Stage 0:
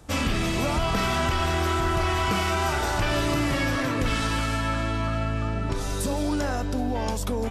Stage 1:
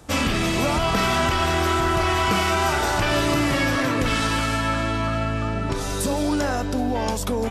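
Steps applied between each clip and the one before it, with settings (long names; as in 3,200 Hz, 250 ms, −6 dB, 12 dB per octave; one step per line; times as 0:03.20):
low-shelf EQ 89 Hz −7 dB
level +4.5 dB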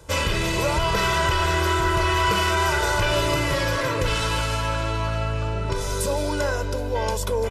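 comb filter 2 ms, depth 81%
level −2.5 dB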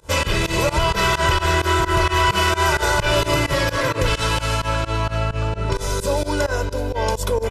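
fake sidechain pumping 130 BPM, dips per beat 2, −23 dB, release 92 ms
level +4 dB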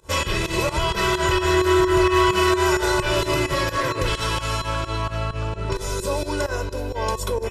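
tuned comb filter 370 Hz, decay 0.21 s, harmonics odd, mix 80%
level +9 dB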